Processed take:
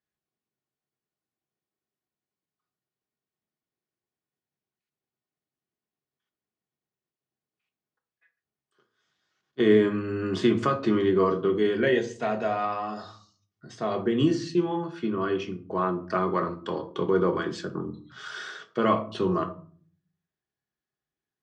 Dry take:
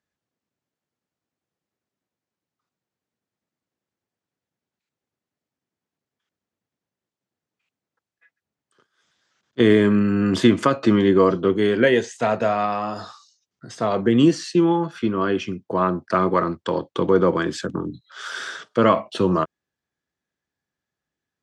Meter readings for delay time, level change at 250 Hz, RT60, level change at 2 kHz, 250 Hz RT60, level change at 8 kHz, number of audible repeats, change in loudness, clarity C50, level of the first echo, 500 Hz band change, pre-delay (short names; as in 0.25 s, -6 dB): none, -7.0 dB, 0.45 s, -6.5 dB, 0.70 s, n/a, none, -6.0 dB, 14.0 dB, none, -5.0 dB, 3 ms